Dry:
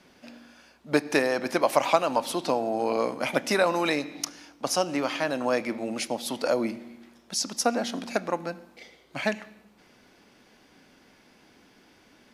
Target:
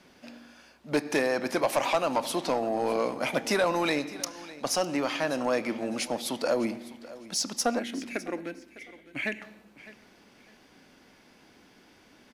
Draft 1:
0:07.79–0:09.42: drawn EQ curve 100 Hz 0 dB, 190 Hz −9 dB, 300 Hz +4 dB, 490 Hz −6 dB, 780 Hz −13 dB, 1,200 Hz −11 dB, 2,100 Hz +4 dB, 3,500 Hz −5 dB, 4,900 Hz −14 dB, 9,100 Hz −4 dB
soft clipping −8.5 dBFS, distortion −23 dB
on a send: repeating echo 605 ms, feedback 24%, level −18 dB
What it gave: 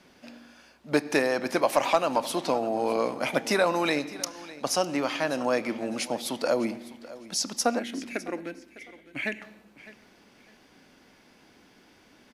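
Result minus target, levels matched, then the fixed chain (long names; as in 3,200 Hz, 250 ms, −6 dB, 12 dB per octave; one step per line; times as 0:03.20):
soft clipping: distortion −10 dB
0:07.79–0:09.42: drawn EQ curve 100 Hz 0 dB, 190 Hz −9 dB, 300 Hz +4 dB, 490 Hz −6 dB, 780 Hz −13 dB, 1,200 Hz −11 dB, 2,100 Hz +4 dB, 3,500 Hz −5 dB, 4,900 Hz −14 dB, 9,100 Hz −4 dB
soft clipping −17 dBFS, distortion −13 dB
on a send: repeating echo 605 ms, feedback 24%, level −18 dB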